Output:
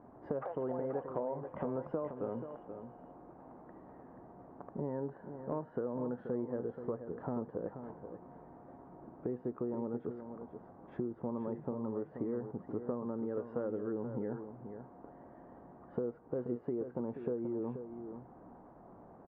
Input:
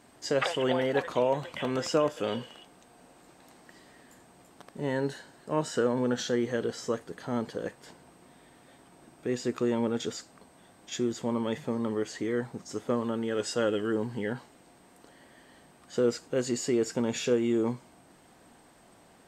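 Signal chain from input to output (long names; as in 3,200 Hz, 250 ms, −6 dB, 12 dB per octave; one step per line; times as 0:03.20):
low-pass filter 1,100 Hz 24 dB per octave
downward compressor 6 to 1, threshold −38 dBFS, peak gain reduction 16.5 dB
single-tap delay 481 ms −9 dB
level +3 dB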